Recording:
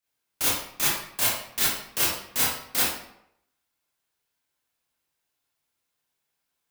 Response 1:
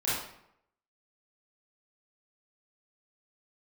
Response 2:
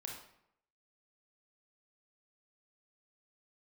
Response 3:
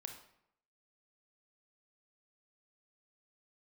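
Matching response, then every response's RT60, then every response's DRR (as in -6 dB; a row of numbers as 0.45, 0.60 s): 1; 0.75, 0.75, 0.75 s; -10.0, -0.5, 4.0 dB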